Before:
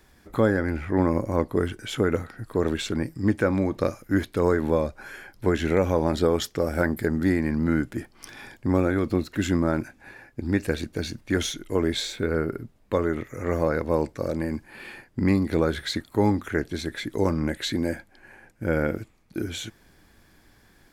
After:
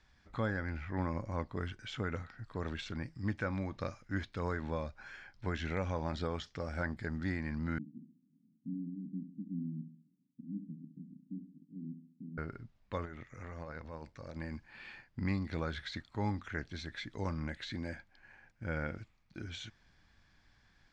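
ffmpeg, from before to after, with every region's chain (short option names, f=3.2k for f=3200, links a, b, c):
-filter_complex "[0:a]asettb=1/sr,asplit=3[a][b][c];[a]atrim=end=7.784[d];[b]atrim=start=7.78:end=12.38,asetpts=PTS-STARTPTS,afade=t=in:d=0.004:c=qsin,afade=t=out:st=4.596:d=0.004:c=qsin,asuperpass=centerf=210:order=8:qfactor=1.6,aecho=1:1:68|136|204|272|340:0.316|0.145|0.0669|0.0308|0.0142,atrim=end_sample=202860[e];[c]atrim=start=12.376[f];[d][e]acrossfade=d=0.004:c1=hsin:c2=qsin[g];[g][f]acrossfade=d=0.004:c1=qsin:c2=hsin,asettb=1/sr,asplit=3[h][i][j];[h]atrim=end=13.054[k];[i]atrim=start=13.05:end=14.36,asetpts=PTS-STARTPTS,afade=t=in:d=0.004:c=qsin,afade=t=out:st=1.306:d=0.004:c=qsin,acompressor=threshold=-26dB:ratio=2.5:attack=3.2:release=140:knee=1:detection=peak,tremolo=f=91:d=0.462[l];[j]atrim=start=14.356[m];[k][l]acrossfade=d=0.004:c1=hsin:c2=qsin[n];[n][m]acrossfade=d=0.004:c1=qsin:c2=hsin,deesser=0.8,lowpass=f=5.9k:w=0.5412,lowpass=f=5.9k:w=1.3066,equalizer=f=380:t=o:w=1.5:g=-11.5,volume=-8dB"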